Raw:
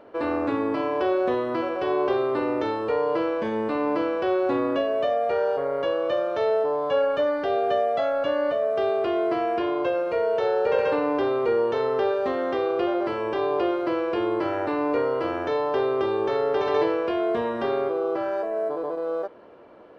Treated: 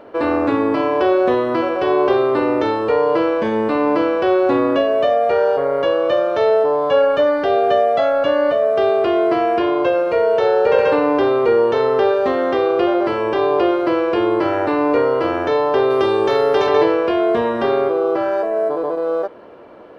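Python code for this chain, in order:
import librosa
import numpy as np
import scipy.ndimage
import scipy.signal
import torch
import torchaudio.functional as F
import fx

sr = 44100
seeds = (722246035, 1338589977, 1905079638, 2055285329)

y = fx.high_shelf(x, sr, hz=4000.0, db=10.0, at=(15.9, 16.67))
y = y * librosa.db_to_amplitude(8.0)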